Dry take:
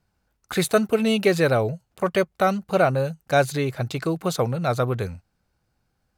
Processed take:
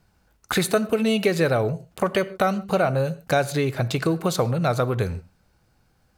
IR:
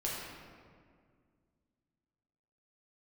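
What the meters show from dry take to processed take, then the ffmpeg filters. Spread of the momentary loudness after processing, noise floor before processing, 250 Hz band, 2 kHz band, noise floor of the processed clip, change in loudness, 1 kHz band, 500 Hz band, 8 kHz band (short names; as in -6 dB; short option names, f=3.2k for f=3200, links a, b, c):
6 LU, -74 dBFS, +0.5 dB, -0.5 dB, -65 dBFS, -0.5 dB, -1.0 dB, -1.0 dB, +1.0 dB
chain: -filter_complex "[0:a]acompressor=threshold=-31dB:ratio=2.5,asplit=2[a][b];[1:a]atrim=start_sample=2205,afade=t=out:st=0.2:d=0.01,atrim=end_sample=9261[c];[b][c]afir=irnorm=-1:irlink=0,volume=-15.5dB[d];[a][d]amix=inputs=2:normalize=0,volume=7.5dB"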